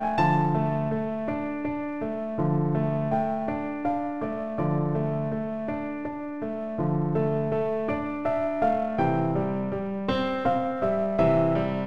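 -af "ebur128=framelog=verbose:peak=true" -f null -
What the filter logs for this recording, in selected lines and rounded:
Integrated loudness:
  I:         -26.9 LUFS
  Threshold: -36.9 LUFS
Loudness range:
  LRA:         3.6 LU
  Threshold: -47.5 LUFS
  LRA low:   -29.2 LUFS
  LRA high:  -25.6 LUFS
True peak:
  Peak:      -10.1 dBFS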